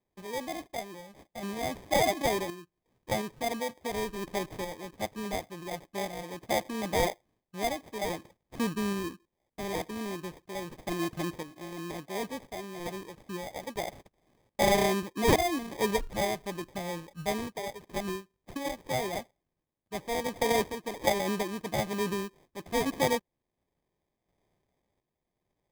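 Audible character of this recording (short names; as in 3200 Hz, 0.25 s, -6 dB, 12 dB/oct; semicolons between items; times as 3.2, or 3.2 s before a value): random-step tremolo 2.8 Hz, depth 70%; aliases and images of a low sample rate 1400 Hz, jitter 0%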